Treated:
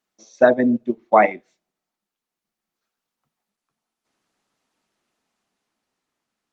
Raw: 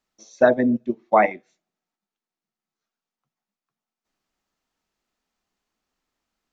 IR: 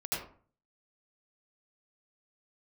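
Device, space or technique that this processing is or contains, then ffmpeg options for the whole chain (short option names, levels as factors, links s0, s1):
video call: -af "highpass=130,dynaudnorm=f=320:g=9:m=2.11,volume=1.26" -ar 48000 -c:a libopus -b:a 24k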